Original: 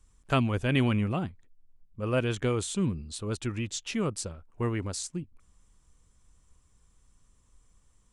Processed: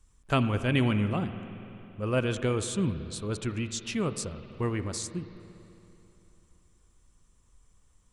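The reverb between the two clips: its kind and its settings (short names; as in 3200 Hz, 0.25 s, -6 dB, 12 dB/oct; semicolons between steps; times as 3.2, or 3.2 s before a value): spring tank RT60 3.1 s, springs 48/55 ms, chirp 40 ms, DRR 10 dB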